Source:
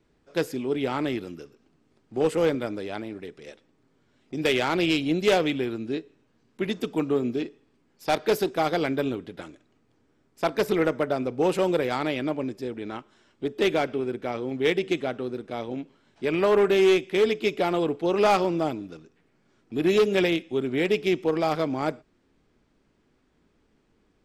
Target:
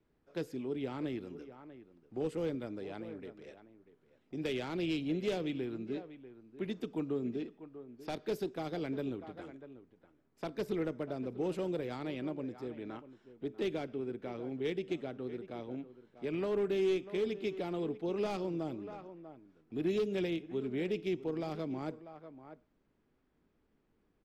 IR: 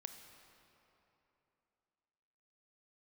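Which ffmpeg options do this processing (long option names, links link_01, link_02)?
-filter_complex "[0:a]highshelf=frequency=3900:gain=-10.5,asplit=2[link_01][link_02];[link_02]adelay=641.4,volume=-16dB,highshelf=frequency=4000:gain=-14.4[link_03];[link_01][link_03]amix=inputs=2:normalize=0,acrossover=split=410|3000[link_04][link_05][link_06];[link_05]acompressor=threshold=-38dB:ratio=2.5[link_07];[link_04][link_07][link_06]amix=inputs=3:normalize=0,volume=-8.5dB"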